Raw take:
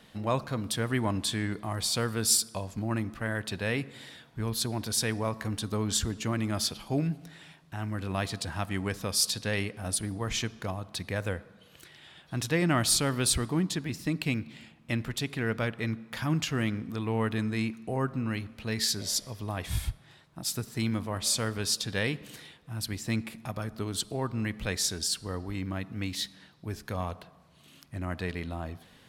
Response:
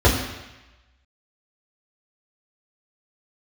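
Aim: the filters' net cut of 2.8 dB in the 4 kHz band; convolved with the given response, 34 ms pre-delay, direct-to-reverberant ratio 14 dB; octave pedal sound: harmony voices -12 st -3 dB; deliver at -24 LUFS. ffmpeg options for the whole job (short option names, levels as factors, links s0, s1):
-filter_complex "[0:a]equalizer=f=4000:t=o:g=-3.5,asplit=2[s0][s1];[1:a]atrim=start_sample=2205,adelay=34[s2];[s1][s2]afir=irnorm=-1:irlink=0,volume=0.0168[s3];[s0][s3]amix=inputs=2:normalize=0,asplit=2[s4][s5];[s5]asetrate=22050,aresample=44100,atempo=2,volume=0.708[s6];[s4][s6]amix=inputs=2:normalize=0,volume=1.88"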